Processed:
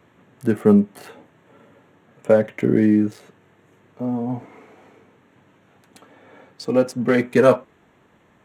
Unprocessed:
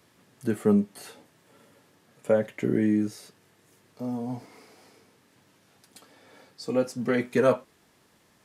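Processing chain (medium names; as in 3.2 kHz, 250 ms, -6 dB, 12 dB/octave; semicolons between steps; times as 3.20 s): local Wiener filter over 9 samples; trim +7.5 dB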